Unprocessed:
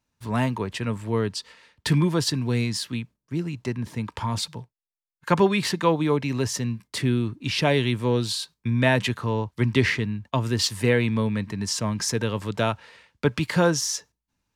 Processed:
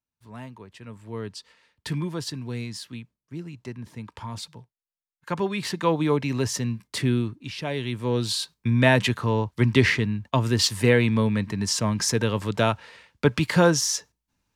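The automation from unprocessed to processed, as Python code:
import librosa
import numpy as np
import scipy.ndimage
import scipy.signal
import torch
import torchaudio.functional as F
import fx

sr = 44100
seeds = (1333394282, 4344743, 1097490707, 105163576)

y = fx.gain(x, sr, db=fx.line((0.74, -16.0), (1.27, -8.0), (5.37, -8.0), (6.01, 0.0), (7.2, 0.0), (7.57, -10.5), (8.39, 2.0)))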